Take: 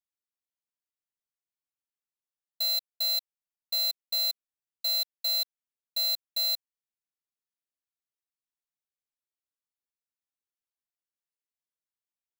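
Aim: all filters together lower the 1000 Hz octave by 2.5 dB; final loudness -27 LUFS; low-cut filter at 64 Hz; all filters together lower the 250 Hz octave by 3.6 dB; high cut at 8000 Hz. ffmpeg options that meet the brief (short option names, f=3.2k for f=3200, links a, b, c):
-af "highpass=64,lowpass=8k,equalizer=f=250:t=o:g=-5,equalizer=f=1k:t=o:g=-4.5,volume=2dB"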